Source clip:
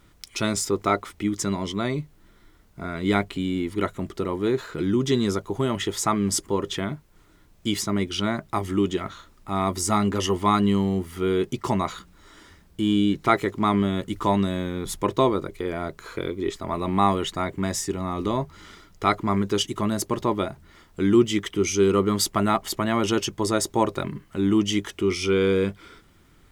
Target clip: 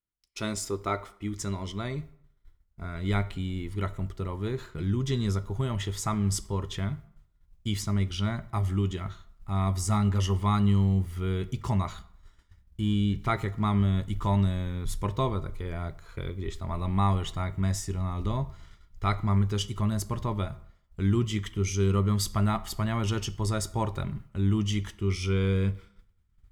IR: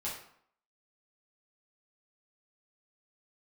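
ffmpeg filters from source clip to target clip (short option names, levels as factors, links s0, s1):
-filter_complex "[0:a]asubboost=boost=9.5:cutoff=100,agate=range=0.0224:threshold=0.0355:ratio=3:detection=peak,asplit=2[s0][s1];[1:a]atrim=start_sample=2205[s2];[s1][s2]afir=irnorm=-1:irlink=0,volume=0.211[s3];[s0][s3]amix=inputs=2:normalize=0,volume=0.376"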